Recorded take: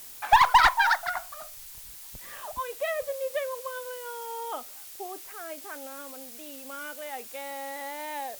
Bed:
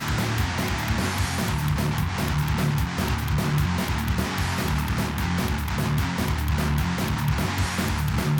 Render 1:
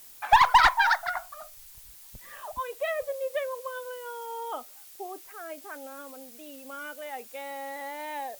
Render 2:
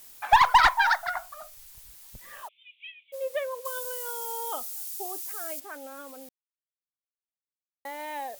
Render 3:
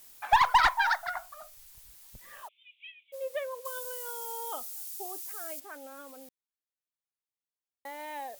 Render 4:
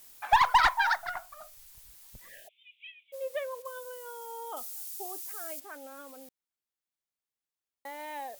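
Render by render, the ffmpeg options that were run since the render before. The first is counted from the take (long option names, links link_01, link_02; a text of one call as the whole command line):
ffmpeg -i in.wav -af "afftdn=noise_reduction=6:noise_floor=-45" out.wav
ffmpeg -i in.wav -filter_complex "[0:a]asplit=3[link_01][link_02][link_03];[link_01]afade=type=out:start_time=2.47:duration=0.02[link_04];[link_02]asuperpass=centerf=2800:order=12:qfactor=2.1,afade=type=in:start_time=2.47:duration=0.02,afade=type=out:start_time=3.12:duration=0.02[link_05];[link_03]afade=type=in:start_time=3.12:duration=0.02[link_06];[link_04][link_05][link_06]amix=inputs=3:normalize=0,asettb=1/sr,asplit=3[link_07][link_08][link_09];[link_07]atrim=end=3.654[link_10];[link_08]atrim=start=3.65:end=5.6,asetpts=PTS-STARTPTS,afade=type=in:duration=0.004:curve=qsin,afade=type=out:start_time=1.946:duration=0.004:curve=qsin,bass=frequency=250:gain=-3,treble=frequency=4000:gain=13[link_11];[link_09]atrim=start=5.596[link_12];[link_10][link_11]acrossfade=duration=0.004:curve1=hsin:curve2=qsin[link_13];[link_13][link_12]acrossfade=duration=0.004:curve1=qsin:curve2=hsin,asplit=3[link_14][link_15][link_16];[link_14]atrim=end=6.29,asetpts=PTS-STARTPTS,afade=type=out:start_time=6.286:duration=0.004:curve=hsin[link_17];[link_15]atrim=start=6.29:end=7.85,asetpts=PTS-STARTPTS,volume=0[link_18];[link_16]atrim=start=7.85,asetpts=PTS-STARTPTS,afade=type=in:duration=0.004:curve=hsin[link_19];[link_17][link_18][link_19]concat=n=3:v=0:a=1" out.wav
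ffmpeg -i in.wav -af "volume=-4dB" out.wav
ffmpeg -i in.wav -filter_complex "[0:a]asettb=1/sr,asplit=3[link_01][link_02][link_03];[link_01]atrim=end=0.964[link_04];[link_02]atrim=start=0.96:end=1.41,asetpts=PTS-STARTPTS,afade=type=in:duration=0.004:curve=qsin,afade=type=out:start_time=0.446:duration=0.004:curve=qsin,aeval=exprs='if(lt(val(0),0),0.708*val(0),val(0))':channel_layout=same[link_05];[link_03]atrim=start=1.406[link_06];[link_04][link_05]acrossfade=duration=0.004:curve1=hsin:curve2=qsin[link_07];[link_07][link_06]acrossfade=duration=0.004:curve1=qsin:curve2=hsin,asettb=1/sr,asplit=3[link_08][link_09][link_10];[link_08]atrim=end=2.284[link_11];[link_09]atrim=start=2.28:end=2.87,asetpts=PTS-STARTPTS,afade=type=in:duration=0.004:curve=qsin,afade=type=out:start_time=0.586:duration=0.004:curve=qsin,asuperstop=centerf=1100:order=12:qfactor=1.2[link_12];[link_10]atrim=start=2.866[link_13];[link_11][link_12]acrossfade=duration=0.004:curve1=hsin:curve2=qsin[link_14];[link_14][link_13]acrossfade=duration=0.004:curve1=qsin:curve2=hsin,asettb=1/sr,asplit=3[link_15][link_16][link_17];[link_15]atrim=end=3.624[link_18];[link_16]atrim=start=3.62:end=4.57,asetpts=PTS-STARTPTS,afade=type=in:duration=0.004:curve=qsin,afade=type=out:start_time=0.946:duration=0.004:curve=qsin,highshelf=frequency=2100:gain=-9[link_19];[link_17]atrim=start=4.566[link_20];[link_18][link_19]acrossfade=duration=0.004:curve1=hsin:curve2=qsin[link_21];[link_21][link_20]acrossfade=duration=0.004:curve1=qsin:curve2=hsin" out.wav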